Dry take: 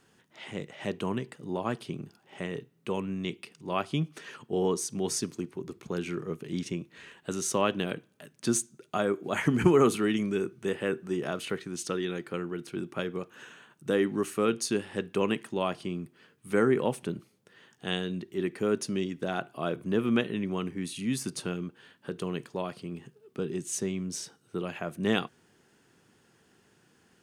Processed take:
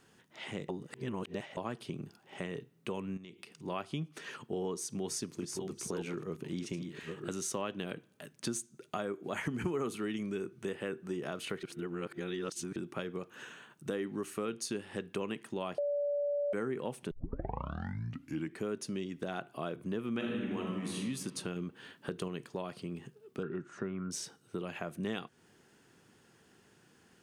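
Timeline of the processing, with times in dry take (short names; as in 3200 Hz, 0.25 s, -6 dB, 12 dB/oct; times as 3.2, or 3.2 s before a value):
0.69–1.57 reverse
3.17–3.57 compressor 8:1, threshold -45 dBFS
4.65–7.31 reverse delay 0.686 s, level -7.5 dB
11.63–12.76 reverse
15.78–16.53 bleep 577 Hz -18.5 dBFS
17.11 tape start 1.51 s
20.11–20.98 reverb throw, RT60 1.6 s, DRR -1.5 dB
21.56–22.28 gain +3.5 dB
23.43–24.11 synth low-pass 1400 Hz, resonance Q 13
whole clip: compressor 3:1, threshold -36 dBFS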